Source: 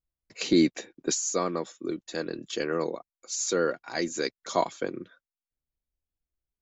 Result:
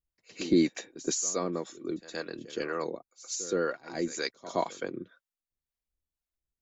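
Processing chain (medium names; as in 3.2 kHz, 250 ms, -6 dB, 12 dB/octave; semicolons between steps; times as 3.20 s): harmonic tremolo 2 Hz, depth 70%, crossover 580 Hz; pre-echo 120 ms -16 dB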